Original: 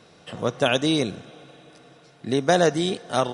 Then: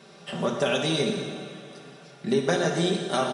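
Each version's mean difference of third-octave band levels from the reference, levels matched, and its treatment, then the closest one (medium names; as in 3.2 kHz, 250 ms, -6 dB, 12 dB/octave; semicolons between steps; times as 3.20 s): 6.0 dB: high-pass 110 Hz; comb 5.1 ms, depth 73%; compression 4:1, threshold -23 dBFS, peak gain reduction 10 dB; plate-style reverb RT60 1.8 s, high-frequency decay 0.9×, DRR 1.5 dB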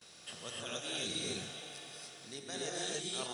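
12.5 dB: pre-emphasis filter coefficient 0.9; gate with hold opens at -55 dBFS; reverse; compression 12:1, threshold -47 dBFS, peak gain reduction 20 dB; reverse; gated-style reverb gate 320 ms rising, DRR -5 dB; trim +6.5 dB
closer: first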